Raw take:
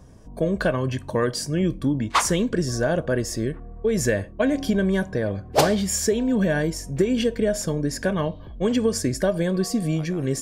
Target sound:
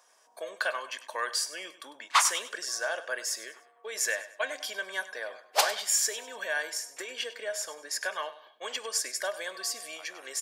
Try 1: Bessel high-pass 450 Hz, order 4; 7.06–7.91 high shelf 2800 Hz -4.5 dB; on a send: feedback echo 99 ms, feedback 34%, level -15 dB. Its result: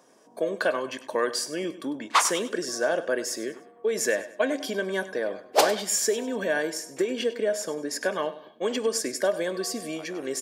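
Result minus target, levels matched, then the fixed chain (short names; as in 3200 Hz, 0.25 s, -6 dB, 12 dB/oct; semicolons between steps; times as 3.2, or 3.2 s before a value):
500 Hz band +8.5 dB
Bessel high-pass 1100 Hz, order 4; 7.06–7.91 high shelf 2800 Hz -4.5 dB; on a send: feedback echo 99 ms, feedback 34%, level -15 dB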